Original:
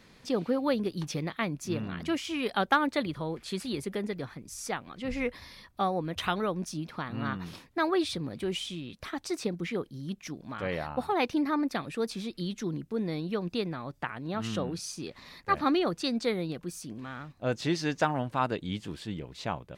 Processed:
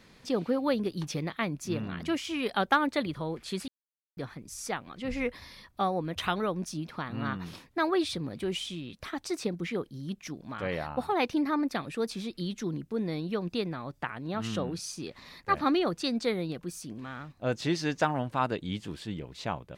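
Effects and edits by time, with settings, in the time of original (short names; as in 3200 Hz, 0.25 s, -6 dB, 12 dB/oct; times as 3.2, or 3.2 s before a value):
3.68–4.17 mute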